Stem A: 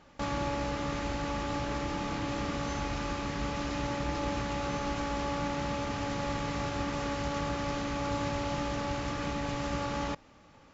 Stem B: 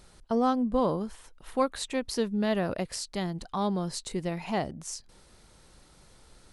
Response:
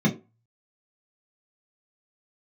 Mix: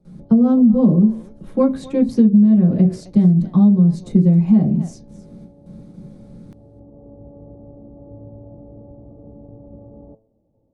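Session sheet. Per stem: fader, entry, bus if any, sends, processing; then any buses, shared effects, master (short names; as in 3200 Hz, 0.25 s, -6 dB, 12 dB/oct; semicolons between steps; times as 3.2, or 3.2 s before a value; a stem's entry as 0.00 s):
+2.5 dB, 0.00 s, no send, no echo send, steep low-pass 640 Hz 36 dB/oct; resonator 110 Hz, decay 0.43 s, harmonics all, mix 70%; auto duck -7 dB, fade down 0.30 s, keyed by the second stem
+0.5 dB, 0.00 s, send -11 dB, echo send -16 dB, gate with hold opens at -46 dBFS; tilt shelf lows +8 dB, about 700 Hz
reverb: on, RT60 0.30 s, pre-delay 3 ms
echo: echo 0.265 s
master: compressor 10:1, threshold -9 dBFS, peak gain reduction 13.5 dB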